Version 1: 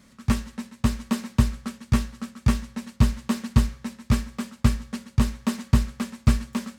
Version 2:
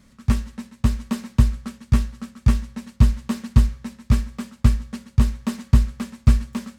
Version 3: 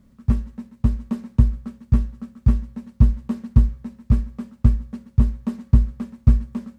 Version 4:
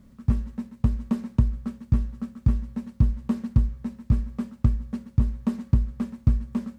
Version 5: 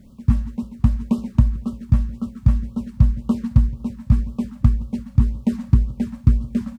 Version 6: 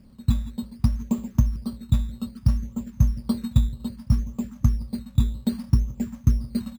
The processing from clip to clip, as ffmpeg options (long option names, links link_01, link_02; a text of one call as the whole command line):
ffmpeg -i in.wav -af "lowshelf=frequency=110:gain=10.5,volume=-2dB" out.wav
ffmpeg -i in.wav -af "tiltshelf=frequency=1200:gain=8.5,acrusher=bits=10:mix=0:aa=0.000001,volume=-8dB" out.wav
ffmpeg -i in.wav -af "acompressor=threshold=-21dB:ratio=2.5,volume=2dB" out.wav
ffmpeg -i in.wav -af "aecho=1:1:169|338|507|676|845:0.0891|0.0535|0.0321|0.0193|0.0116,afftfilt=real='re*(1-between(b*sr/1024,350*pow(2000/350,0.5+0.5*sin(2*PI*1.9*pts/sr))/1.41,350*pow(2000/350,0.5+0.5*sin(2*PI*1.9*pts/sr))*1.41))':imag='im*(1-between(b*sr/1024,350*pow(2000/350,0.5+0.5*sin(2*PI*1.9*pts/sr))/1.41,350*pow(2000/350,0.5+0.5*sin(2*PI*1.9*pts/sr))*1.41))':win_size=1024:overlap=0.75,volume=5.5dB" out.wav
ffmpeg -i in.wav -af "acrusher=samples=9:mix=1:aa=0.000001:lfo=1:lforange=5.4:lforate=0.62,volume=-4.5dB" out.wav